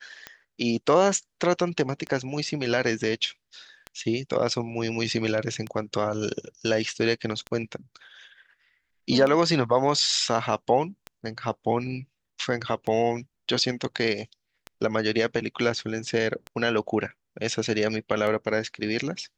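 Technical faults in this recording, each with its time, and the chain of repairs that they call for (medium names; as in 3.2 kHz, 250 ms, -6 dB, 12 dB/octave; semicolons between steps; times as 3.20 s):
tick 33 1/3 rpm -19 dBFS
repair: de-click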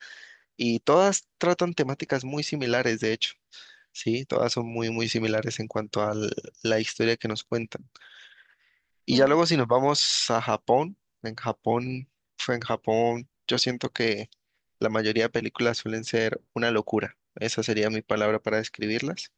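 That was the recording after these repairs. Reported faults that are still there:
nothing left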